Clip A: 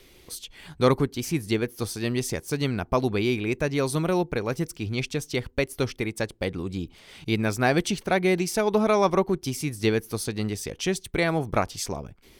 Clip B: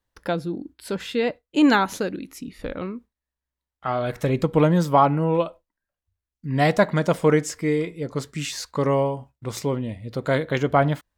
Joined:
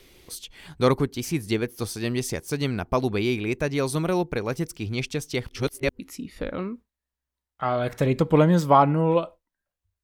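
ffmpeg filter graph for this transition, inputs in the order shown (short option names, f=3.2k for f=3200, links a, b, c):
-filter_complex "[0:a]apad=whole_dur=10.03,atrim=end=10.03,asplit=2[a][b];[a]atrim=end=5.482[c];[b]atrim=start=5.478:end=5.992,asetpts=PTS-STARTPTS,areverse[d];[1:a]atrim=start=2.218:end=6.26[e];[c][d]acrossfade=d=0.004:c1=hsin:c2=hsin[f];[f][e]acrossfade=d=0.004:c1=hsin:c2=hsin"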